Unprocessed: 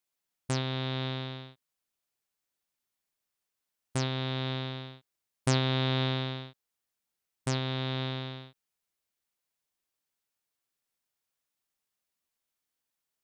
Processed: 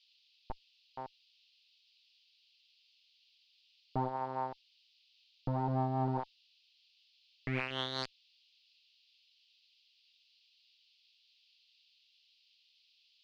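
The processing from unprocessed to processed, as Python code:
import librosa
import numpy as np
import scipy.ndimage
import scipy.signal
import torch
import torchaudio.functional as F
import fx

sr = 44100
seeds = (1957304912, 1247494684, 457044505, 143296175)

y = fx.fade_in_head(x, sr, length_s=0.99)
y = fx.echo_wet_bandpass(y, sr, ms=203, feedback_pct=84, hz=650.0, wet_db=-15.0)
y = fx.schmitt(y, sr, flips_db=-29.0)
y = fx.rotary_switch(y, sr, hz=1.1, then_hz=5.0, switch_at_s=2.39)
y = fx.filter_sweep_lowpass(y, sr, from_hz=870.0, to_hz=7200.0, start_s=6.87, end_s=8.36, q=7.6)
y = fx.dmg_noise_band(y, sr, seeds[0], low_hz=2600.0, high_hz=4900.0, level_db=-75.0)
y = y * 10.0 ** (5.0 / 20.0)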